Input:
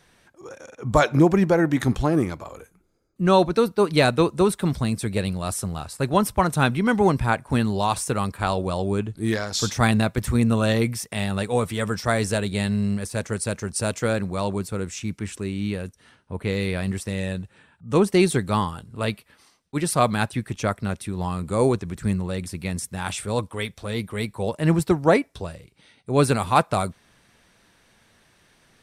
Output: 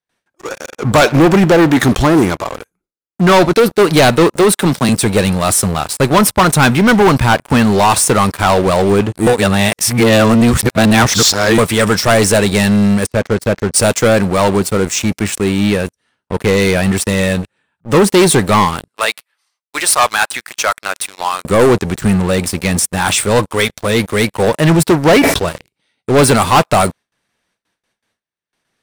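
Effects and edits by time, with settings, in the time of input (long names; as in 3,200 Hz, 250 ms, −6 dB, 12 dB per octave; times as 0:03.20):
0:04.32–0:04.89: Bessel high-pass filter 160 Hz, order 8
0:09.27–0:11.58: reverse
0:13.06–0:13.74: head-to-tape spacing loss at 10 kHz 21 dB
0:18.88–0:21.45: high-pass filter 910 Hz
0:25.04–0:25.49: level that may fall only so fast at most 71 dB per second
whole clip: noise gate with hold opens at −48 dBFS; low-shelf EQ 160 Hz −9.5 dB; leveller curve on the samples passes 5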